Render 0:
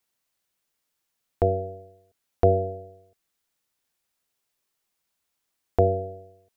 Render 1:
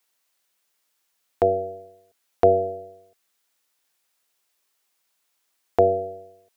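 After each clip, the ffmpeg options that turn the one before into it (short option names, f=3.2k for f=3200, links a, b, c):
-af "highpass=f=510:p=1,volume=6.5dB"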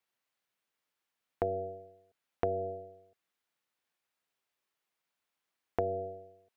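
-af "bass=f=250:g=5,treble=f=4k:g=-10,acompressor=threshold=-20dB:ratio=6,volume=-8dB"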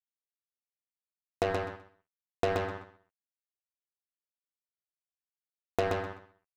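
-filter_complex "[0:a]acrusher=bits=4:mix=0:aa=0.5,asplit=2[a][b];[b]aecho=0:1:127|254|381:0.668|0.127|0.0241[c];[a][c]amix=inputs=2:normalize=0,volume=2.5dB"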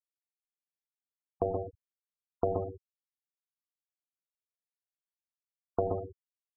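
-af "adynamicsmooth=sensitivity=0.5:basefreq=1.1k,afftfilt=real='re*gte(hypot(re,im),0.0447)':imag='im*gte(hypot(re,im),0.0447)':win_size=1024:overlap=0.75"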